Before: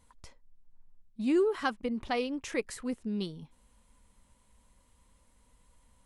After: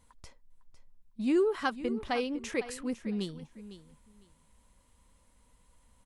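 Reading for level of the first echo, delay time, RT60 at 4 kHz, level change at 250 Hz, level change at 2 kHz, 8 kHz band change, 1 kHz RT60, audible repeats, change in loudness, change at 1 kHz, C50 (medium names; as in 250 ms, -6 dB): -14.0 dB, 504 ms, no reverb, 0.0 dB, 0.0 dB, 0.0 dB, no reverb, 2, 0.0 dB, 0.0 dB, no reverb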